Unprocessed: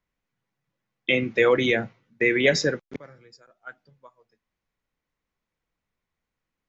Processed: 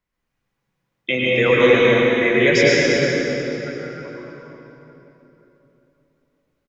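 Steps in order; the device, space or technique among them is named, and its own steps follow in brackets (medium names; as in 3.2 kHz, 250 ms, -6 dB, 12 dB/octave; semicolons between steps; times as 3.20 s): cave (delay 357 ms -11.5 dB; reverberation RT60 3.5 s, pre-delay 96 ms, DRR -6.5 dB)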